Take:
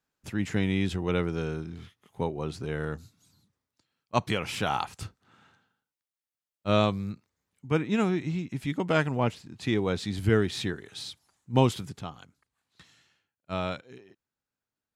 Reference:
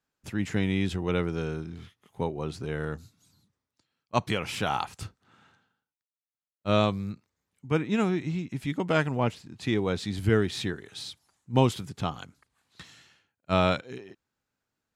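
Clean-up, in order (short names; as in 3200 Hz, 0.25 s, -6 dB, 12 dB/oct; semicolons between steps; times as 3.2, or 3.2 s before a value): gain correction +8 dB, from 11.99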